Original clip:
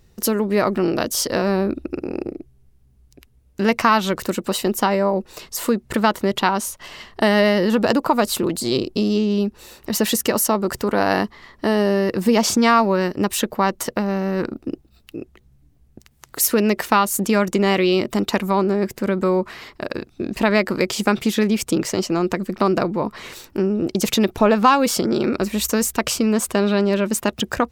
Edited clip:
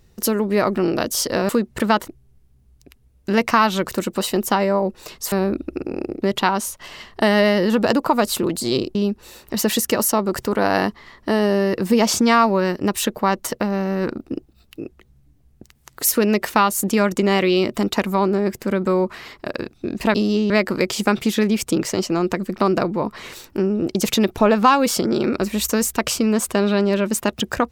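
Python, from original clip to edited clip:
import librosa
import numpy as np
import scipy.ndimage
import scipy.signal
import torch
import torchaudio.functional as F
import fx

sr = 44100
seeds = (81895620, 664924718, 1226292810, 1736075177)

y = fx.edit(x, sr, fx.swap(start_s=1.49, length_s=0.9, other_s=5.63, other_length_s=0.59),
    fx.move(start_s=8.95, length_s=0.36, to_s=20.5), tone=tone)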